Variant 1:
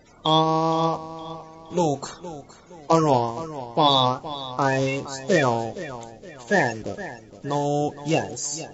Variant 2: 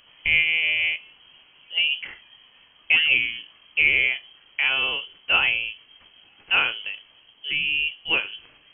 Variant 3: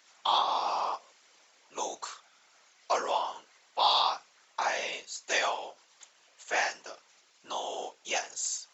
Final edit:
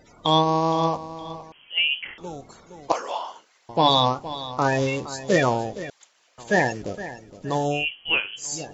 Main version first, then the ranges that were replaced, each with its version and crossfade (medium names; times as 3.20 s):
1
1.52–2.18 s: from 2
2.92–3.69 s: from 3
5.90–6.38 s: from 3
7.78–8.43 s: from 2, crossfade 0.16 s